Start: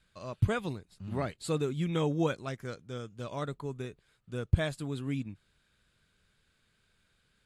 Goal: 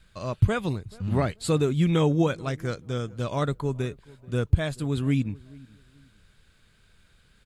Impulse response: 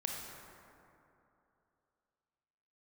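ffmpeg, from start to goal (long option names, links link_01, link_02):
-filter_complex "[0:a]alimiter=limit=-21dB:level=0:latency=1:release=473,lowshelf=frequency=92:gain=9,asplit=2[link_01][link_02];[link_02]adelay=433,lowpass=frequency=1200:poles=1,volume=-22.5dB,asplit=2[link_03][link_04];[link_04]adelay=433,lowpass=frequency=1200:poles=1,volume=0.28[link_05];[link_03][link_05]amix=inputs=2:normalize=0[link_06];[link_01][link_06]amix=inputs=2:normalize=0,volume=8.5dB"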